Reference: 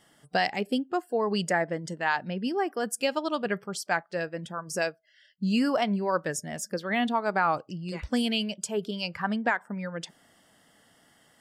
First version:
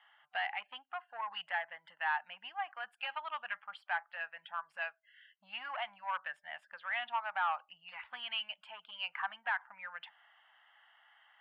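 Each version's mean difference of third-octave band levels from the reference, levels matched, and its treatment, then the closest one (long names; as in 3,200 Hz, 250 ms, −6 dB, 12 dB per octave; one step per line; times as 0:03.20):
12.5 dB: in parallel at −2 dB: downward compressor, threshold −34 dBFS, peak gain reduction 13.5 dB
on the sum: soft clipping −19.5 dBFS, distortion −14 dB
elliptic band-pass filter 820–3,000 Hz, stop band 40 dB
level −4.5 dB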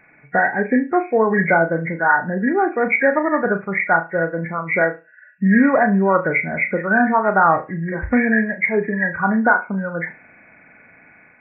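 8.5 dB: hearing-aid frequency compression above 1,400 Hz 4 to 1
automatic gain control gain up to 3.5 dB
flutter between parallel walls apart 6.2 metres, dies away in 0.26 s
level +6.5 dB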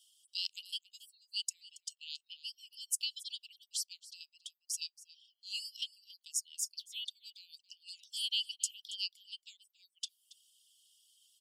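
19.5 dB: Butterworth high-pass 2,900 Hz 96 dB per octave
reverb reduction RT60 0.56 s
single-tap delay 277 ms −18.5 dB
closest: second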